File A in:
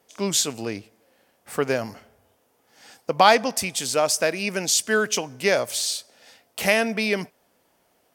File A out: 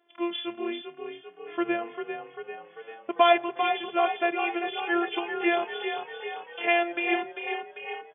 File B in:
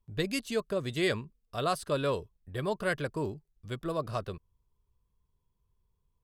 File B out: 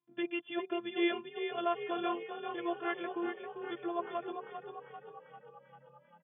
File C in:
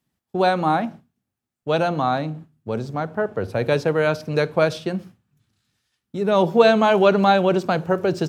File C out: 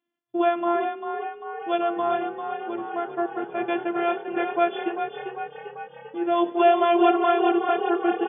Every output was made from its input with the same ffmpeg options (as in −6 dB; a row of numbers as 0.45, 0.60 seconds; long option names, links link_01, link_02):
-filter_complex "[0:a]afftfilt=real='hypot(re,im)*cos(PI*b)':imag='0':win_size=512:overlap=0.75,asplit=9[link_01][link_02][link_03][link_04][link_05][link_06][link_07][link_08][link_09];[link_02]adelay=395,afreqshift=34,volume=-7.5dB[link_10];[link_03]adelay=790,afreqshift=68,volume=-11.8dB[link_11];[link_04]adelay=1185,afreqshift=102,volume=-16.1dB[link_12];[link_05]adelay=1580,afreqshift=136,volume=-20.4dB[link_13];[link_06]adelay=1975,afreqshift=170,volume=-24.7dB[link_14];[link_07]adelay=2370,afreqshift=204,volume=-29dB[link_15];[link_08]adelay=2765,afreqshift=238,volume=-33.3dB[link_16];[link_09]adelay=3160,afreqshift=272,volume=-37.6dB[link_17];[link_01][link_10][link_11][link_12][link_13][link_14][link_15][link_16][link_17]amix=inputs=9:normalize=0,afftfilt=real='re*between(b*sr/4096,120,3500)':imag='im*between(b*sr/4096,120,3500)':win_size=4096:overlap=0.75"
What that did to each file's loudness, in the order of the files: −5.5, −4.0, −4.0 LU